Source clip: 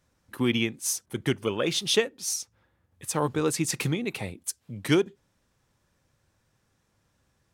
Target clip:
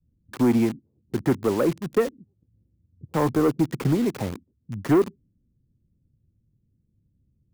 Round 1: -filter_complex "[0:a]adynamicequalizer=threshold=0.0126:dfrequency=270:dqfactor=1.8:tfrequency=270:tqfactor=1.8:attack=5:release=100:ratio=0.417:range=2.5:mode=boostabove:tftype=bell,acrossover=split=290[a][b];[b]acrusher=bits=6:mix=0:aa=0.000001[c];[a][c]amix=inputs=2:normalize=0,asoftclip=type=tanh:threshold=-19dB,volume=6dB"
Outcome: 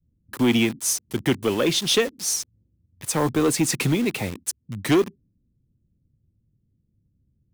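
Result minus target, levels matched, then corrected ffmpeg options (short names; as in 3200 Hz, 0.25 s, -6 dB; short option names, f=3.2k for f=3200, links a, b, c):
2000 Hz band +7.0 dB
-filter_complex "[0:a]adynamicequalizer=threshold=0.0126:dfrequency=270:dqfactor=1.8:tfrequency=270:tqfactor=1.8:attack=5:release=100:ratio=0.417:range=2.5:mode=boostabove:tftype=bell,lowpass=f=1.5k:w=0.5412,lowpass=f=1.5k:w=1.3066,acrossover=split=290[a][b];[b]acrusher=bits=6:mix=0:aa=0.000001[c];[a][c]amix=inputs=2:normalize=0,asoftclip=type=tanh:threshold=-19dB,volume=6dB"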